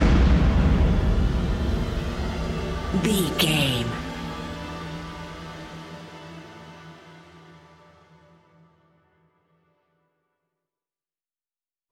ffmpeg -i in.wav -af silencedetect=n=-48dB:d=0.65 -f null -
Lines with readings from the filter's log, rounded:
silence_start: 8.65
silence_end: 11.91 | silence_duration: 3.26